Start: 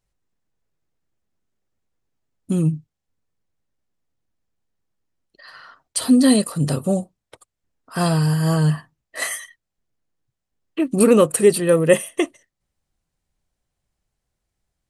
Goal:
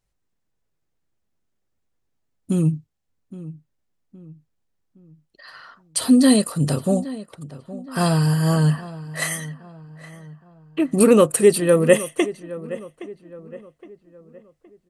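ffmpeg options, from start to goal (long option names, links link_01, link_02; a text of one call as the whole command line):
ffmpeg -i in.wav -filter_complex "[0:a]asplit=2[link_01][link_02];[link_02]adelay=817,lowpass=frequency=2200:poles=1,volume=-16dB,asplit=2[link_03][link_04];[link_04]adelay=817,lowpass=frequency=2200:poles=1,volume=0.42,asplit=2[link_05][link_06];[link_06]adelay=817,lowpass=frequency=2200:poles=1,volume=0.42,asplit=2[link_07][link_08];[link_08]adelay=817,lowpass=frequency=2200:poles=1,volume=0.42[link_09];[link_01][link_03][link_05][link_07][link_09]amix=inputs=5:normalize=0" out.wav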